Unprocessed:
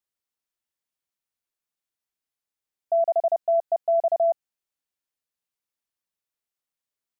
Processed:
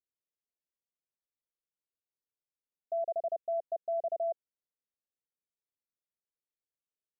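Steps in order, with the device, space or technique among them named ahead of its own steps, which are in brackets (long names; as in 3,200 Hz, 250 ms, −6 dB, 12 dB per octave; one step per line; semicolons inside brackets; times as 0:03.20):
under water (low-pass filter 610 Hz 24 dB per octave; parametric band 480 Hz +5 dB 0.77 octaves)
level −8.5 dB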